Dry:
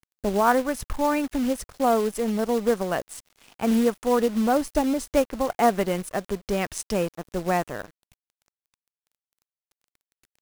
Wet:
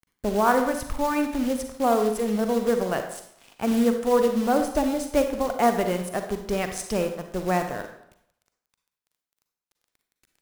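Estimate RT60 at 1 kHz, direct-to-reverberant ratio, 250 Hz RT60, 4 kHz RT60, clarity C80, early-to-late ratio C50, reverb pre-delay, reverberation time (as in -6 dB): 0.75 s, 6.0 dB, 0.70 s, 0.60 s, 10.5 dB, 7.0 dB, 37 ms, 0.75 s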